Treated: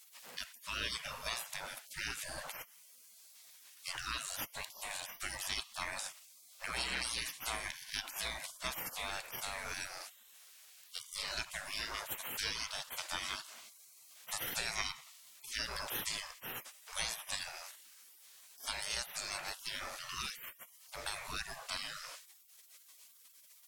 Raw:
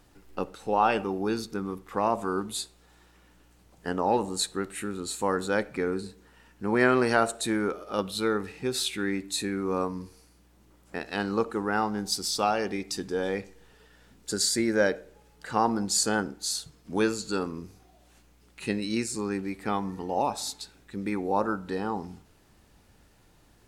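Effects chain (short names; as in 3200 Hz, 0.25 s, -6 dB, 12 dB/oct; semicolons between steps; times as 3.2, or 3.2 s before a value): spectral gate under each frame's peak -30 dB weak; compressor 2.5:1, threshold -51 dBFS, peak gain reduction 8.5 dB; gain +14.5 dB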